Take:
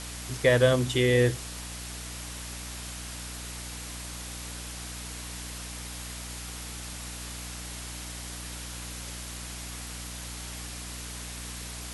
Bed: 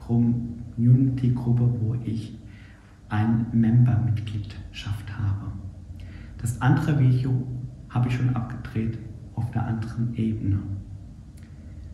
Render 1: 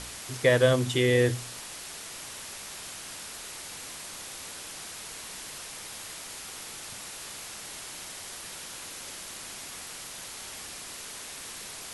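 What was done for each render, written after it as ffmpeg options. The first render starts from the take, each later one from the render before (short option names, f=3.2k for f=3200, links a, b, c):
-af "bandreject=f=60:t=h:w=4,bandreject=f=120:t=h:w=4,bandreject=f=180:t=h:w=4,bandreject=f=240:t=h:w=4,bandreject=f=300:t=h:w=4"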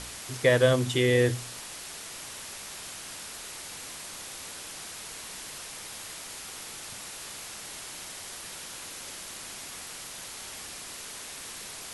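-af anull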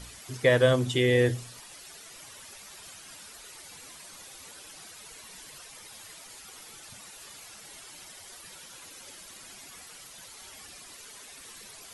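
-af "afftdn=nr=11:nf=-42"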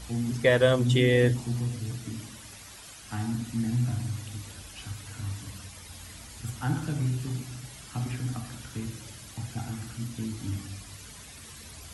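-filter_complex "[1:a]volume=-9dB[a];[0:a][a]amix=inputs=2:normalize=0"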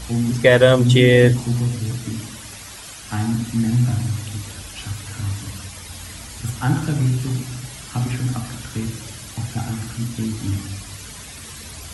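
-af "volume=9.5dB,alimiter=limit=-1dB:level=0:latency=1"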